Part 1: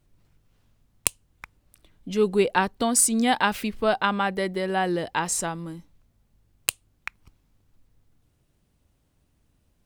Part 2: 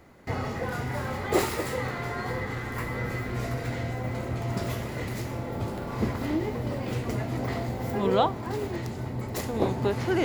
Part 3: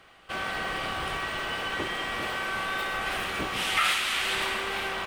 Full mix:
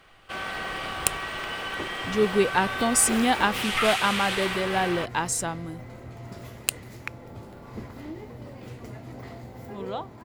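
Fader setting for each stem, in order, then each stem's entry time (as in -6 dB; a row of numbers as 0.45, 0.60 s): -1.0, -10.5, -1.0 dB; 0.00, 1.75, 0.00 s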